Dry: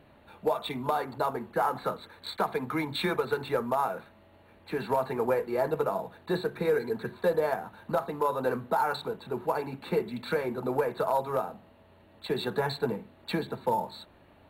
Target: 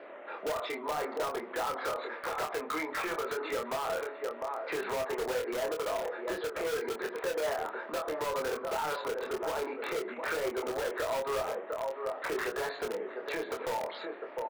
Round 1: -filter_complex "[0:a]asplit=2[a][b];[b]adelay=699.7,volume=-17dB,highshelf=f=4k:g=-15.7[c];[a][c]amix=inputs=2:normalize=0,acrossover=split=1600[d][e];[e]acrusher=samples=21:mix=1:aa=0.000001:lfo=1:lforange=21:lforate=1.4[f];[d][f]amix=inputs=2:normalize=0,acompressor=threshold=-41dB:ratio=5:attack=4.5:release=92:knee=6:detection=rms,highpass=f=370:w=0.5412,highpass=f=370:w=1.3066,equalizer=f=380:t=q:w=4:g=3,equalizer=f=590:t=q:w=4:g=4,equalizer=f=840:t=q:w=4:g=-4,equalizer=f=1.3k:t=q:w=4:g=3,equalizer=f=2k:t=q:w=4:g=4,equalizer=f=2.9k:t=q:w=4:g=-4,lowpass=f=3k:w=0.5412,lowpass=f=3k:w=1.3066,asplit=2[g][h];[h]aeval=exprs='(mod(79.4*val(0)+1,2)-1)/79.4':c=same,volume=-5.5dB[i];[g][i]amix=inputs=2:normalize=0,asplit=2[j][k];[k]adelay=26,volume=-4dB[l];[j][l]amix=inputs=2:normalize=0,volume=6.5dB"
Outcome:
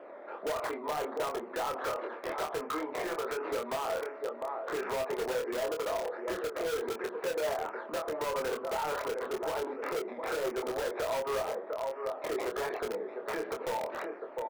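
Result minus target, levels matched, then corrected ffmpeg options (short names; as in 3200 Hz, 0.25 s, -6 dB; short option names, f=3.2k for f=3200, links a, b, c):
decimation with a swept rate: distortion +27 dB
-filter_complex "[0:a]asplit=2[a][b];[b]adelay=699.7,volume=-17dB,highshelf=f=4k:g=-15.7[c];[a][c]amix=inputs=2:normalize=0,acrossover=split=1600[d][e];[e]acrusher=samples=6:mix=1:aa=0.000001:lfo=1:lforange=6:lforate=1.4[f];[d][f]amix=inputs=2:normalize=0,acompressor=threshold=-41dB:ratio=5:attack=4.5:release=92:knee=6:detection=rms,highpass=f=370:w=0.5412,highpass=f=370:w=1.3066,equalizer=f=380:t=q:w=4:g=3,equalizer=f=590:t=q:w=4:g=4,equalizer=f=840:t=q:w=4:g=-4,equalizer=f=1.3k:t=q:w=4:g=3,equalizer=f=2k:t=q:w=4:g=4,equalizer=f=2.9k:t=q:w=4:g=-4,lowpass=f=3k:w=0.5412,lowpass=f=3k:w=1.3066,asplit=2[g][h];[h]aeval=exprs='(mod(79.4*val(0)+1,2)-1)/79.4':c=same,volume=-5.5dB[i];[g][i]amix=inputs=2:normalize=0,asplit=2[j][k];[k]adelay=26,volume=-4dB[l];[j][l]amix=inputs=2:normalize=0,volume=6.5dB"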